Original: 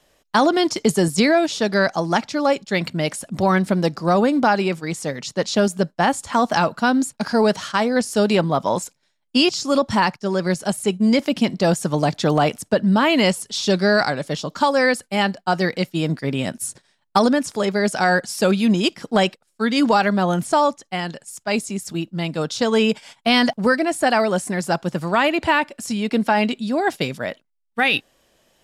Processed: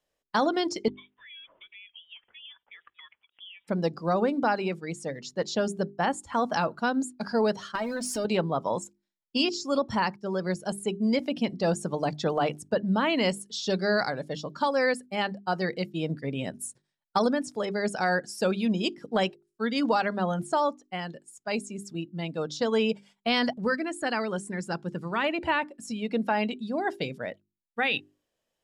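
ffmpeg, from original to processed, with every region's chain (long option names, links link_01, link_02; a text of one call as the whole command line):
ffmpeg -i in.wav -filter_complex "[0:a]asettb=1/sr,asplit=3[link_01][link_02][link_03];[link_01]atrim=end=0.884[link_04];[link_02]atrim=start=0.88:end=3.68,asetpts=PTS-STARTPTS,afade=type=in:duration=0.004:curve=qsin,afade=type=out:start_time=2.796:duration=0.004:curve=qsin,highpass=frequency=730:width=0.5412,highpass=frequency=730:width=1.3066,acompressor=threshold=-33dB:ratio=16:attack=3.2:release=140:knee=1:detection=peak,lowpass=frequency=3400:width_type=q:width=0.5098,lowpass=frequency=3400:width_type=q:width=0.6013,lowpass=frequency=3400:width_type=q:width=0.9,lowpass=frequency=3400:width_type=q:width=2.563,afreqshift=-4000[link_05];[link_03]atrim=start=3.676[link_06];[link_04][link_05]acrossfade=duration=0.004:curve1=hsin:curve2=qsin[link_07];[link_07][link_06]acrossfade=duration=0.004:curve1=qsin:curve2=hsin,asettb=1/sr,asplit=3[link_08][link_09][link_10];[link_08]atrim=end=7.754[link_11];[link_09]atrim=start=7.75:end=8.25,asetpts=PTS-STARTPTS,afade=type=in:duration=0.004:curve=qsin,afade=type=out:start_time=0.496:duration=0.004:curve=qsin,aeval=exprs='val(0)+0.5*0.0562*sgn(val(0))':channel_layout=same,acompressor=threshold=-18dB:ratio=10:attack=3.2:release=140:knee=1:detection=peak,aecho=1:1:3.2:0.55,atrim=end_sample=22050[link_12];[link_10]atrim=start=8.246[link_13];[link_11][link_12]acrossfade=duration=0.004:curve1=hsin:curve2=qsin[link_14];[link_14][link_13]acrossfade=duration=0.004:curve1=qsin:curve2=hsin,asettb=1/sr,asplit=3[link_15][link_16][link_17];[link_15]atrim=end=23.574[link_18];[link_16]atrim=start=23.57:end=25.24,asetpts=PTS-STARTPTS,afade=type=in:duration=0.004:curve=qsin,afade=type=out:start_time=1.666:duration=0.004:curve=qsin,lowpass=11000,equalizer=frequency=660:width_type=o:width=0.7:gain=-7.5,acompressor=mode=upward:threshold=-28dB:ratio=2.5:attack=3.2:release=140:knee=2.83:detection=peak[link_19];[link_17]atrim=start=25.236[link_20];[link_18][link_19]acrossfade=duration=0.004:curve1=hsin:curve2=qsin[link_21];[link_21][link_20]acrossfade=duration=0.004:curve1=qsin:curve2=hsin,afftdn=noise_reduction=13:noise_floor=-34,equalizer=frequency=480:width=5.4:gain=3.5,bandreject=frequency=50:width_type=h:width=6,bandreject=frequency=100:width_type=h:width=6,bandreject=frequency=150:width_type=h:width=6,bandreject=frequency=200:width_type=h:width=6,bandreject=frequency=250:width_type=h:width=6,bandreject=frequency=300:width_type=h:width=6,bandreject=frequency=350:width_type=h:width=6,bandreject=frequency=400:width_type=h:width=6,volume=-8.5dB" out.wav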